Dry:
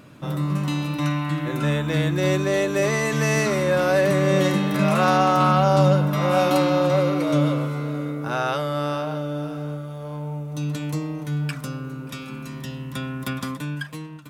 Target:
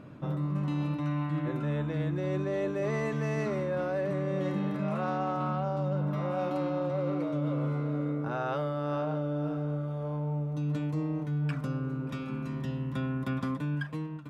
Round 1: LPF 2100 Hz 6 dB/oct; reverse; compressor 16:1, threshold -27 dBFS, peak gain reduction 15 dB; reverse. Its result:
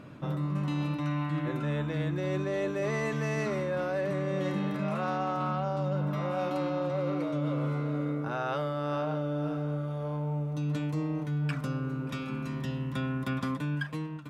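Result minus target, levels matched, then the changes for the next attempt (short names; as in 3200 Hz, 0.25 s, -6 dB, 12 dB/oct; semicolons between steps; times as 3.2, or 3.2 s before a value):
2000 Hz band +3.0 dB
change: LPF 1000 Hz 6 dB/oct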